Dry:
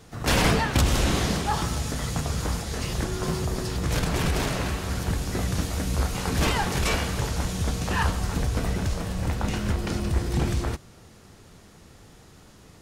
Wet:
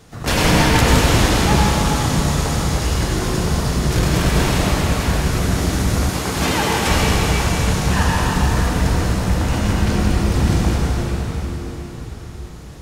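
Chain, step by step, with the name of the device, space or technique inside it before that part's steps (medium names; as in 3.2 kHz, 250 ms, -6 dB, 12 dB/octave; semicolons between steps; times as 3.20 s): cathedral (reverberation RT60 5.0 s, pre-delay 75 ms, DRR -4.5 dB); 6.09–6.87 s: high-pass 160 Hz 6 dB/octave; trim +3 dB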